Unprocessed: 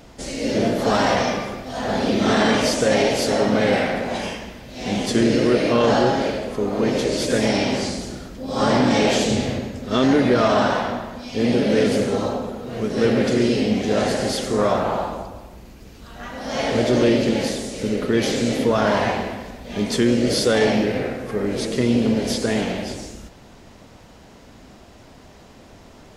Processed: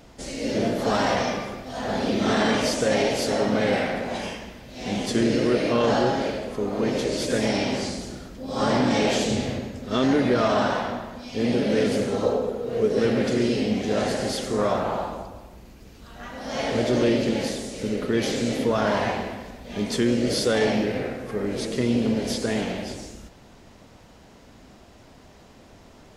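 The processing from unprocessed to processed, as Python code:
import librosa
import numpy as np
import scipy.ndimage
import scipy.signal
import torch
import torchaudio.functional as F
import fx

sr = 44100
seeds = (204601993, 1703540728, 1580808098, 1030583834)

y = fx.peak_eq(x, sr, hz=460.0, db=12.0, octaves=0.49, at=(12.23, 12.99))
y = F.gain(torch.from_numpy(y), -4.0).numpy()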